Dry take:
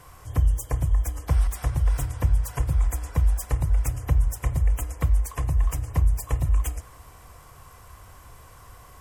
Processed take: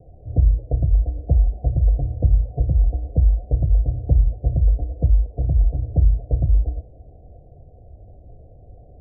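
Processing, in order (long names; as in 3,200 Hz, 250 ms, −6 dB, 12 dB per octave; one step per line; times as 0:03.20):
Butterworth low-pass 720 Hz 96 dB per octave
level +5 dB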